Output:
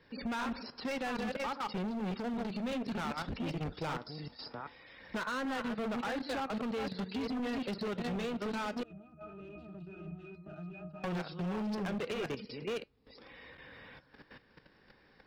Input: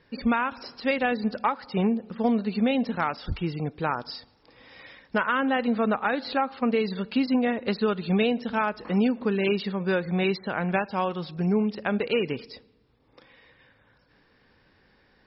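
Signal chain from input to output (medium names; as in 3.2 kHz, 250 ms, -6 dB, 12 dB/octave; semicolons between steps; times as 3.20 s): chunks repeated in reverse 389 ms, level -5 dB; level held to a coarse grid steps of 15 dB; overload inside the chain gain 32.5 dB; flange 0.15 Hz, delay 3.6 ms, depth 4.7 ms, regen -83%; 8.83–11.04 s: pitch-class resonator D#, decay 0.24 s; three bands compressed up and down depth 40%; trim +3.5 dB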